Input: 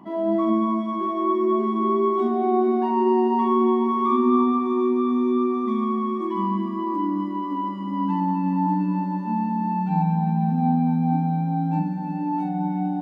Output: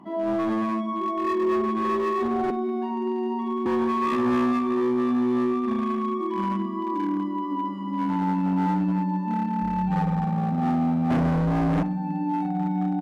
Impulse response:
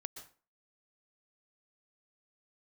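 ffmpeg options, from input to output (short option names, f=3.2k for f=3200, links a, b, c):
-filter_complex "[0:a]asettb=1/sr,asplit=3[a][b][c];[a]atrim=end=2.504[d];[b]atrim=start=2.5:end=3.66,asetpts=PTS-STARTPTS,afade=t=in:d=0.004:c=qsin,afade=t=out:st=1.156:d=0.004:c=qsin,acrossover=split=300|1700[e][f][g];[e]acompressor=threshold=-27dB:ratio=4[h];[f]acompressor=threshold=-32dB:ratio=4[i];[g]acompressor=threshold=-44dB:ratio=4[j];[h][i][j]amix=inputs=3:normalize=0[k];[c]atrim=start=3.656[l];[d][k]acrossfade=d=0.004:c1=hsin:c2=qsin[m];[m][l]acrossfade=d=0.004:c1=qsin:c2=hsin,asettb=1/sr,asplit=3[n][o][p];[n]atrim=end=9.624[q];[o]atrim=start=9.62:end=10.25,asetpts=PTS-STARTPTS,afade=t=in:d=0.004:c=qsin,afade=t=out:st=0.626:d=0.004:c=qsin,aeval=exprs='val(0)+0.0141*(sin(2*PI*50*n/s)+sin(2*PI*2*50*n/s)/2+sin(2*PI*3*50*n/s)/3+sin(2*PI*4*50*n/s)/4+sin(2*PI*5*50*n/s)/5)':c=same[r];[p]atrim=start=10.246[s];[q][r]acrossfade=d=0.004:c1=hsin:c2=qsin[t];[t][s]acrossfade=d=0.004:c1=qsin:c2=hsin,asettb=1/sr,asplit=3[u][v][w];[u]atrim=end=11.104[x];[v]atrim=start=11.1:end=11.83,asetpts=PTS-STARTPTS,afade=t=in:d=0.004:c=qsin,afade=t=out:st=0.726:d=0.004:c=qsin,equalizer=f=125:t=o:w=1:g=9,equalizer=f=250:t=o:w=1:g=9,equalizer=f=500:t=o:w=1:g=10[y];[w]atrim=start=11.826[z];[x][y]acrossfade=d=0.004:c1=hsin:c2=qsin[aa];[aa][z]acrossfade=d=0.004:c1=qsin:c2=hsin,asoftclip=type=hard:threshold=-19dB,asplit=2[ab][ac];[ac]adelay=65,lowpass=f=1.9k:p=1,volume=-14.5dB,asplit=2[ad][ae];[ae]adelay=65,lowpass=f=1.9k:p=1,volume=0.49,asplit=2[af][ag];[ag]adelay=65,lowpass=f=1.9k:p=1,volume=0.49,asplit=2[ah][ai];[ai]adelay=65,lowpass=f=1.9k:p=1,volume=0.49,asplit=2[aj][ak];[ak]adelay=65,lowpass=f=1.9k:p=1,volume=0.49[al];[ab][ad][af][ah][aj][al]amix=inputs=6:normalize=0[am];[1:a]atrim=start_sample=2205,atrim=end_sample=4410,asetrate=26901,aresample=44100[an];[am][an]afir=irnorm=-1:irlink=0"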